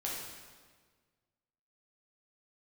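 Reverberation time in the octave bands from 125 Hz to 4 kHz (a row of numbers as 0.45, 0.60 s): 2.0, 1.7, 1.6, 1.5, 1.4, 1.3 s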